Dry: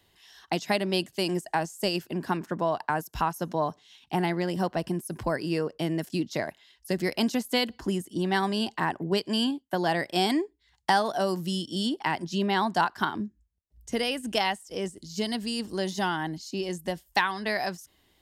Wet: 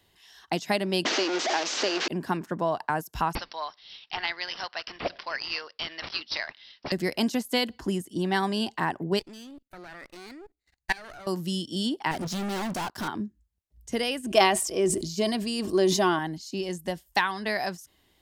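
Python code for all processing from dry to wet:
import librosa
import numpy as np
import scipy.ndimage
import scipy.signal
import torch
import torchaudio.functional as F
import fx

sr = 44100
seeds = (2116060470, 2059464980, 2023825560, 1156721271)

y = fx.chain(x, sr, fx.delta_mod(bps=32000, step_db=-22.5),
    fx.steep_highpass(hz=260.0, slope=36),
    fx.band_squash(depth_pct=100), at=(1.05, 2.08))
y = fx.chain(y, sr, fx.highpass(hz=1200.0, slope=12),
    fx.high_shelf(hz=2400.0, db=12.0),
    fx.resample_bad(factor=4, down='none', up='filtered'), at=(3.35, 6.92))
y = fx.chain(y, sr, fx.lower_of_two(delay_ms=0.45),
    fx.dynamic_eq(hz=1500.0, q=0.88, threshold_db=-41.0, ratio=4.0, max_db=4),
    fx.level_steps(step_db=22), at=(9.19, 11.27))
y = fx.chain(y, sr, fx.peak_eq(hz=1800.0, db=-9.5, octaves=2.4),
    fx.leveller(passes=3),
    fx.clip_hard(threshold_db=-29.5), at=(12.11, 13.08))
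y = fx.chain(y, sr, fx.small_body(hz=(370.0, 640.0, 1100.0, 2400.0), ring_ms=55, db=12),
    fx.sustainer(db_per_s=57.0), at=(14.26, 16.19))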